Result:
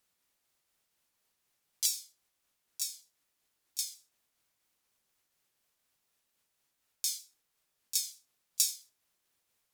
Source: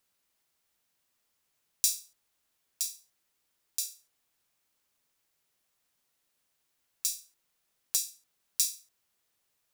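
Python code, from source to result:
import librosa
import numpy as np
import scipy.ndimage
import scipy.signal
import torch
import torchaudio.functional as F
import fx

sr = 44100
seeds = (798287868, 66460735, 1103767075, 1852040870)

p1 = fx.pitch_ramps(x, sr, semitones=-3.0, every_ms=232)
y = p1 + fx.echo_single(p1, sr, ms=83, db=-18.0, dry=0)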